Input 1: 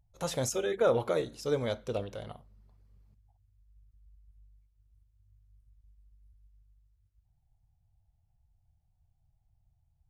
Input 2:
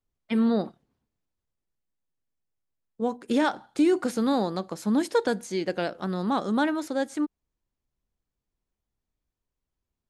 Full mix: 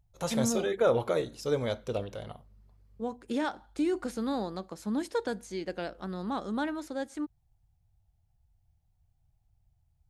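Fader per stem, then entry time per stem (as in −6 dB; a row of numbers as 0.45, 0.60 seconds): +1.0, −7.5 decibels; 0.00, 0.00 seconds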